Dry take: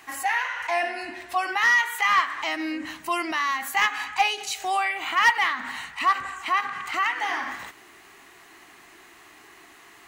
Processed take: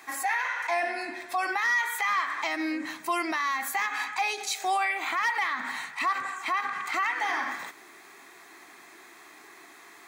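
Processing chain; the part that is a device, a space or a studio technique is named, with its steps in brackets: PA system with an anti-feedback notch (high-pass 200 Hz 12 dB/octave; Butterworth band-stop 2.9 kHz, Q 7.7; peak limiter -19 dBFS, peak gain reduction 10.5 dB)

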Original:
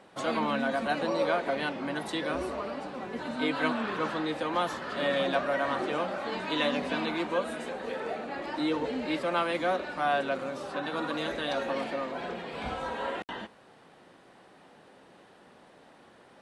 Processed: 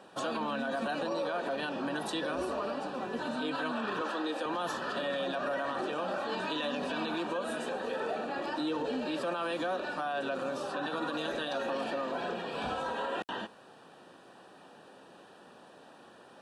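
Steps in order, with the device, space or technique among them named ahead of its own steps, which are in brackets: PA system with an anti-feedback notch (high-pass 160 Hz 6 dB/octave; Butterworth band-stop 2.1 kHz, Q 4.6; peak limiter -27.5 dBFS, peak gain reduction 11.5 dB); 4.01–4.46 s: high-pass 240 Hz 24 dB/octave; trim +2 dB

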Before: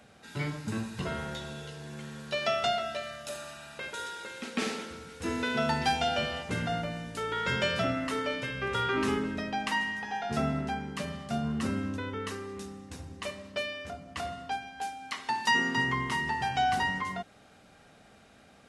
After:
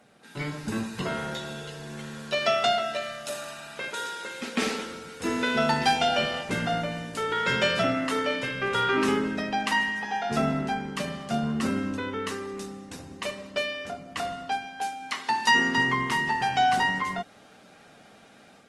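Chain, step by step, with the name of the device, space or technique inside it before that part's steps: video call (high-pass 150 Hz 12 dB/octave; level rider gain up to 5 dB; Opus 24 kbps 48 kHz)

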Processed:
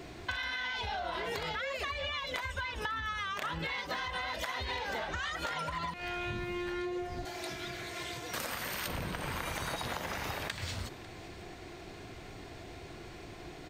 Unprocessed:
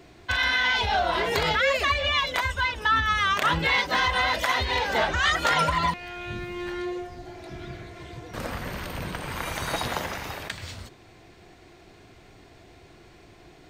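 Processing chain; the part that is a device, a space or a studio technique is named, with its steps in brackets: serial compression, leveller first (compression, threshold -28 dBFS, peak gain reduction 9.5 dB; compression 6:1, threshold -38 dBFS, peak gain reduction 11.5 dB); 7.25–8.88 s: tilt EQ +3 dB/octave; delay 547 ms -19 dB; trim +4 dB

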